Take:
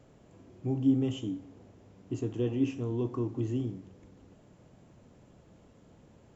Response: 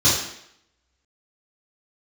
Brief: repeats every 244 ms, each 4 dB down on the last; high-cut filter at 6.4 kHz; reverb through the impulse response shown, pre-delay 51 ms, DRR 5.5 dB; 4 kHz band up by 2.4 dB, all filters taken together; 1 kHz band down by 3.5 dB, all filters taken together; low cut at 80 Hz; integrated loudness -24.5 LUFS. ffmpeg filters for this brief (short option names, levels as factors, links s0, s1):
-filter_complex "[0:a]highpass=80,lowpass=6400,equalizer=f=1000:t=o:g=-4.5,equalizer=f=4000:t=o:g=4.5,aecho=1:1:244|488|732|976|1220|1464|1708|1952|2196:0.631|0.398|0.25|0.158|0.0994|0.0626|0.0394|0.0249|0.0157,asplit=2[s0][s1];[1:a]atrim=start_sample=2205,adelay=51[s2];[s1][s2]afir=irnorm=-1:irlink=0,volume=0.0668[s3];[s0][s3]amix=inputs=2:normalize=0,volume=1.41"